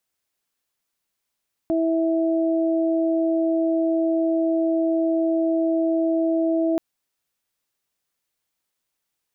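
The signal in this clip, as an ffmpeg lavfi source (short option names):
-f lavfi -i "aevalsrc='0.106*sin(2*PI*327*t)+0.0708*sin(2*PI*654*t)':d=5.08:s=44100"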